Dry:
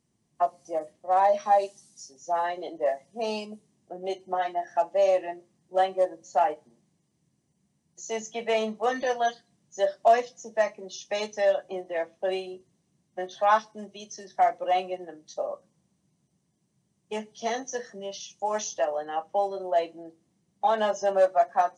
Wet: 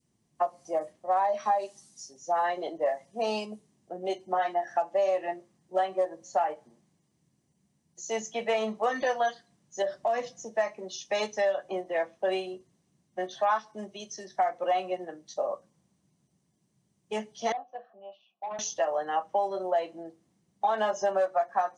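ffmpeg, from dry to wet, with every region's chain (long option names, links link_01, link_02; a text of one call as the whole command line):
ffmpeg -i in.wav -filter_complex "[0:a]asettb=1/sr,asplit=3[link_01][link_02][link_03];[link_01]atrim=end=9.824[link_04];[link_02]atrim=start=9.82:end=10.45,asetpts=PTS-STARTPTS,afade=type=in:duration=0.004:curve=qsin,afade=type=out:start_time=0.626:duration=0.004:curve=qsin,lowshelf=frequency=200:gain=11,acompressor=threshold=-29dB:ratio=2.5:attack=3.2:release=140:knee=1:detection=peak[link_05];[link_03]atrim=start=10.446[link_06];[link_04][link_05]acrossfade=duration=0.004:curve1=hsin:curve2=qsin[link_07];[link_07][link_06]acrossfade=duration=0.004:curve1=qsin:curve2=hsin,asettb=1/sr,asplit=3[link_08][link_09][link_10];[link_08]atrim=end=17.524[link_11];[link_09]atrim=start=17.52:end=18.59,asetpts=PTS-STARTPTS,afade=type=in:duration=0.004:curve=qsin,afade=type=out:start_time=1.066:duration=0.004:curve=qsin,asplit=3[link_12][link_13][link_14];[link_12]bandpass=frequency=730:width_type=q:width=8,volume=0dB[link_15];[link_13]bandpass=frequency=1090:width_type=q:width=8,volume=-6dB[link_16];[link_14]bandpass=frequency=2440:width_type=q:width=8,volume=-9dB[link_17];[link_15][link_16][link_17]amix=inputs=3:normalize=0,asoftclip=type=hard:threshold=-35dB,highpass=120,equalizer=frequency=210:width_type=q:width=4:gain=8,equalizer=frequency=810:width_type=q:width=4:gain=4,equalizer=frequency=1600:width_type=q:width=4:gain=4,equalizer=frequency=2200:width_type=q:width=4:gain=-8,lowpass=frequency=3500:width=0.5412,lowpass=frequency=3500:width=1.3066[link_18];[link_10]atrim=start=18.586[link_19];[link_11][link_18]acrossfade=duration=0.004:curve1=hsin:curve2=qsin[link_20];[link_20][link_19]acrossfade=duration=0.004:curve1=qsin:curve2=hsin,adynamicequalizer=threshold=0.0178:dfrequency=1200:dqfactor=0.79:tfrequency=1200:tqfactor=0.79:attack=5:release=100:ratio=0.375:range=3:mode=boostabove:tftype=bell,acompressor=threshold=-23dB:ratio=6" out.wav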